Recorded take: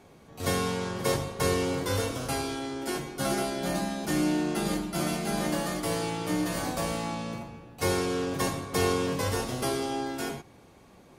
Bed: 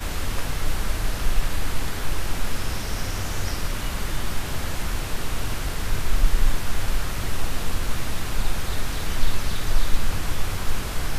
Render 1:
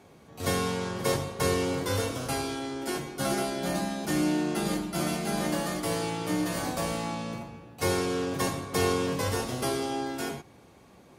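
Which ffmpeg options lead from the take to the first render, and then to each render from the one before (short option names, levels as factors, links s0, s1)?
-af "highpass=51"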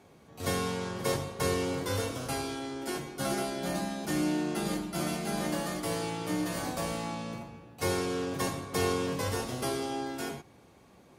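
-af "volume=0.708"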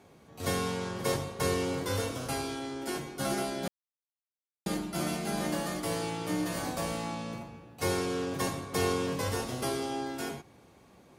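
-filter_complex "[0:a]asplit=3[s0][s1][s2];[s0]atrim=end=3.68,asetpts=PTS-STARTPTS,afade=t=out:st=3.676:d=0.004:c=hsin[s3];[s1]atrim=start=3.68:end=4.66,asetpts=PTS-STARTPTS,volume=0[s4];[s2]atrim=start=4.66,asetpts=PTS-STARTPTS,afade=t=in:d=0.004:c=hsin[s5];[s3][s4][s5]concat=n=3:v=0:a=1"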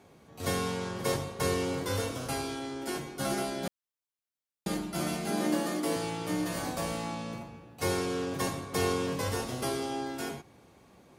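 -filter_complex "[0:a]asettb=1/sr,asplit=3[s0][s1][s2];[s0]atrim=end=5.304[s3];[s1]atrim=start=5.3:end=5.96,asetpts=PTS-STARTPTS,afade=t=in:d=0.004:c=qsin,afade=t=out:st=0.656:d=0.004:c=qsin,highpass=f=260:t=q:w=2.2[s4];[s2]atrim=start=5.956[s5];[s3][s4]acrossfade=d=0.004:c1=hsin:c2=qsin[s6];[s6][s5]acrossfade=d=0.004:c1=qsin:c2=hsin"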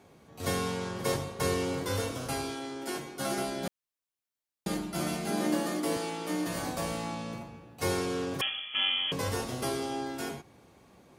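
-filter_complex "[0:a]asettb=1/sr,asplit=3[s0][s1][s2];[s0]atrim=end=2.514[s3];[s1]atrim=start=2.51:end=3.38,asetpts=PTS-STARTPTS,afade=t=in:d=0.004:c=qsin,afade=t=out:st=0.866:d=0.004:c=qsin,lowshelf=f=110:g=-11.5[s4];[s2]atrim=start=3.376[s5];[s3][s4]acrossfade=d=0.004:c1=hsin:c2=qsin[s6];[s6][s5]acrossfade=d=0.004:c1=qsin:c2=hsin,asettb=1/sr,asplit=3[s7][s8][s9];[s7]atrim=end=5.974[s10];[s8]atrim=start=5.97:end=6.47,asetpts=PTS-STARTPTS,afade=t=in:d=0.004:c=qsin,afade=t=out:st=0.496:d=0.004:c=qsin,highpass=f=190:w=0.5412,highpass=f=190:w=1.3066[s11];[s9]atrim=start=6.466[s12];[s10][s11]acrossfade=d=0.004:c1=hsin:c2=qsin[s13];[s13][s12]acrossfade=d=0.004:c1=qsin:c2=hsin,asettb=1/sr,asplit=3[s14][s15][s16];[s14]atrim=end=8.414[s17];[s15]atrim=start=8.41:end=9.12,asetpts=PTS-STARTPTS,afade=t=in:d=0.004:c=qsin,afade=t=out:st=0.706:d=0.004:c=qsin,lowpass=f=3000:t=q:w=0.5098,lowpass=f=3000:t=q:w=0.6013,lowpass=f=3000:t=q:w=0.9,lowpass=f=3000:t=q:w=2.563,afreqshift=-3500[s18];[s16]atrim=start=9.116[s19];[s17][s18]acrossfade=d=0.004:c1=hsin:c2=qsin[s20];[s20][s19]acrossfade=d=0.004:c1=qsin:c2=hsin"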